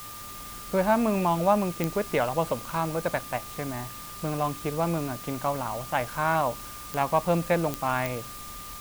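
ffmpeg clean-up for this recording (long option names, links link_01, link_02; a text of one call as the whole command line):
ffmpeg -i in.wav -af "adeclick=threshold=4,bandreject=frequency=105:width_type=h:width=4,bandreject=frequency=210:width_type=h:width=4,bandreject=frequency=315:width_type=h:width=4,bandreject=frequency=1200:width=30,afwtdn=0.0071" out.wav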